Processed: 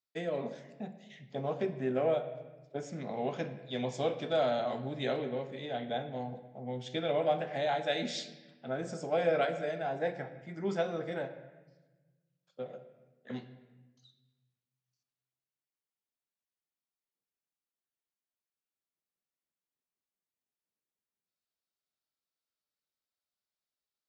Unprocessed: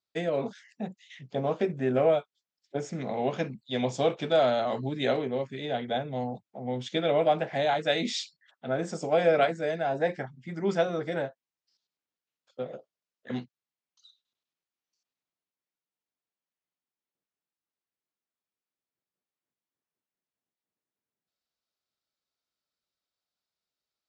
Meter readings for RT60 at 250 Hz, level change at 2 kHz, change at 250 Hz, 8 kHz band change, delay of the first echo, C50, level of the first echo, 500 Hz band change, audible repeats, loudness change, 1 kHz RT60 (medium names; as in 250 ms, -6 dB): 1.6 s, -6.0 dB, -6.0 dB, -6.5 dB, no echo, 11.0 dB, no echo, -5.5 dB, no echo, -6.0 dB, 1.1 s